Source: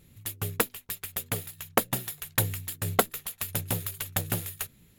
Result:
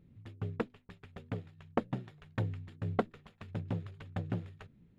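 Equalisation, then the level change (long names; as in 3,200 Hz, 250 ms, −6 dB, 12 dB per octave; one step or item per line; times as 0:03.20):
head-to-tape spacing loss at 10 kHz 40 dB
parametric band 210 Hz +6.5 dB 1.8 octaves
−6.5 dB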